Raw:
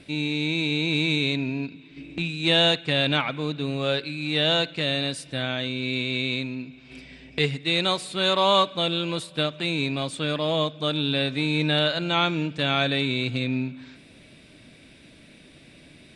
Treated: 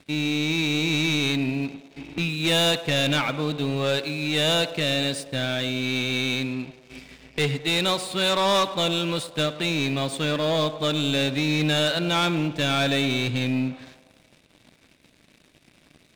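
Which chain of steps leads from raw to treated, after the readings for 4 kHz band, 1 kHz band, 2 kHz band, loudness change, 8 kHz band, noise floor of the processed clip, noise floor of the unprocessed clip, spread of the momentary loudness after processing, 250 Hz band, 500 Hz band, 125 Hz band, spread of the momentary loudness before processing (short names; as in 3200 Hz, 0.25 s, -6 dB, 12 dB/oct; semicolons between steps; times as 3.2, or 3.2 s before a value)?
0.0 dB, 0.0 dB, +0.5 dB, +0.5 dB, +8.5 dB, -59 dBFS, -51 dBFS, 6 LU, +1.5 dB, +1.0 dB, +1.5 dB, 9 LU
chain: sample leveller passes 3; narrowing echo 0.105 s, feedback 68%, band-pass 620 Hz, level -12 dB; gain -8 dB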